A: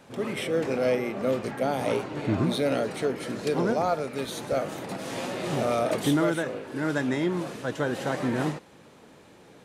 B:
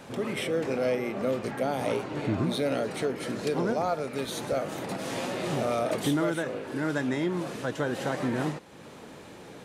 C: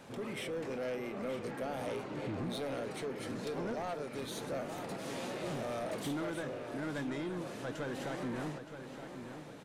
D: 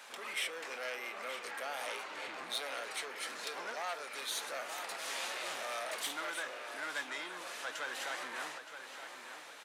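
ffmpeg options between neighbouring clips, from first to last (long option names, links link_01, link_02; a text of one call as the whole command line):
ffmpeg -i in.wav -af "acompressor=threshold=-47dB:ratio=1.5,volume=6.5dB" out.wav
ffmpeg -i in.wav -filter_complex "[0:a]asoftclip=type=tanh:threshold=-26dB,asplit=2[link_01][link_02];[link_02]adelay=921,lowpass=frequency=4400:poles=1,volume=-9dB,asplit=2[link_03][link_04];[link_04]adelay=921,lowpass=frequency=4400:poles=1,volume=0.48,asplit=2[link_05][link_06];[link_06]adelay=921,lowpass=frequency=4400:poles=1,volume=0.48,asplit=2[link_07][link_08];[link_08]adelay=921,lowpass=frequency=4400:poles=1,volume=0.48,asplit=2[link_09][link_10];[link_10]adelay=921,lowpass=frequency=4400:poles=1,volume=0.48[link_11];[link_01][link_03][link_05][link_07][link_09][link_11]amix=inputs=6:normalize=0,volume=-7dB" out.wav
ffmpeg -i in.wav -af "highpass=1200,volume=7.5dB" out.wav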